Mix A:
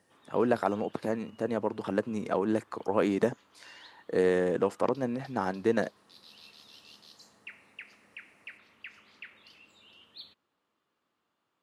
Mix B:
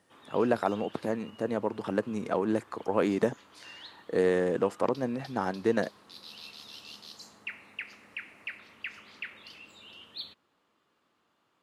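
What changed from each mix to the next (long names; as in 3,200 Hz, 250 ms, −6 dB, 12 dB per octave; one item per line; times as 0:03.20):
background +7.0 dB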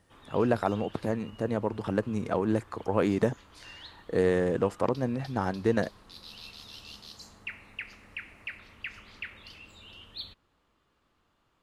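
master: remove high-pass filter 190 Hz 12 dB per octave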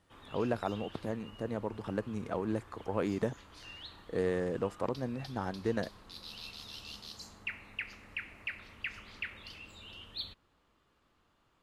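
speech −7.0 dB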